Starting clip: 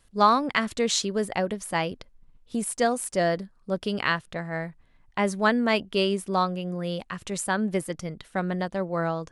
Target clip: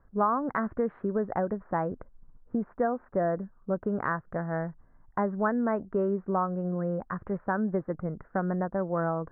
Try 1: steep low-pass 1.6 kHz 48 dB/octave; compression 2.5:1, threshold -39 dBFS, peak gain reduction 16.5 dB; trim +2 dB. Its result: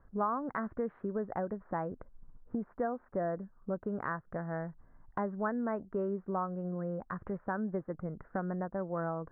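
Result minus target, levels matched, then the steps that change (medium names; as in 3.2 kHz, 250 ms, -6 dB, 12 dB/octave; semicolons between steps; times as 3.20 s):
compression: peak gain reduction +6.5 dB
change: compression 2.5:1, threshold -28 dBFS, peak gain reduction 10 dB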